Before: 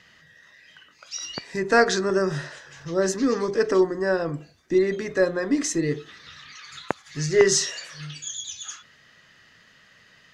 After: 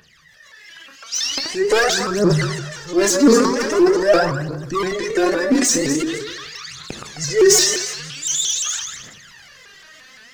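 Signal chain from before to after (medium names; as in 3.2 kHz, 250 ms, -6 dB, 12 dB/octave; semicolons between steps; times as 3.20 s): backward echo that repeats 129 ms, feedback 40%, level -10 dB; tone controls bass -3 dB, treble +6 dB; level rider gain up to 9 dB; hard clipper -11.5 dBFS, distortion -12 dB; phaser 0.44 Hz, delay 4.4 ms, feedback 78%; reverberation, pre-delay 3 ms, DRR 12 dB; transient shaper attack -2 dB, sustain +7 dB; vibrato with a chosen wave saw up 5.8 Hz, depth 160 cents; trim -4 dB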